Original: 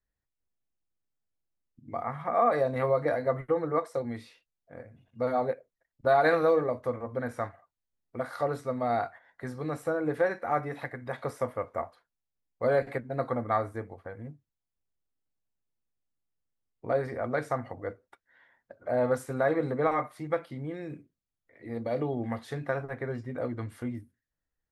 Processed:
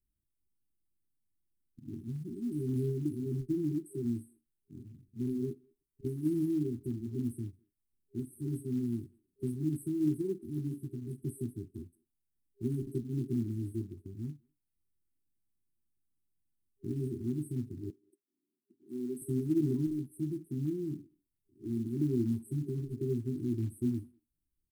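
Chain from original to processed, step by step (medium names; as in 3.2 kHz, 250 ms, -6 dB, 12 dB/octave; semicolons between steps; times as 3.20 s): FFT band-reject 400–7900 Hz; dynamic bell 520 Hz, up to +4 dB, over -56 dBFS, Q 2; short-mantissa float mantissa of 4-bit; 17.90–19.22 s: ladder high-pass 200 Hz, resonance 20%; speakerphone echo 200 ms, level -28 dB; trim +3 dB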